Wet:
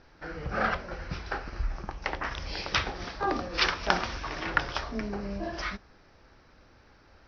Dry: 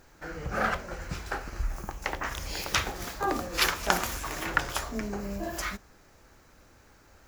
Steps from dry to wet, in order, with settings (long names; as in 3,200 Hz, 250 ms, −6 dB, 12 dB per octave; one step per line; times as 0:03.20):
Butterworth low-pass 5,700 Hz 96 dB per octave